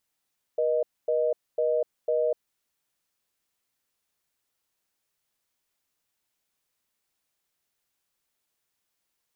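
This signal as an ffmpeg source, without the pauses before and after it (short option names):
-f lavfi -i "aevalsrc='0.0596*(sin(2*PI*480*t)+sin(2*PI*620*t))*clip(min(mod(t,0.5),0.25-mod(t,0.5))/0.005,0,1)':d=1.84:s=44100"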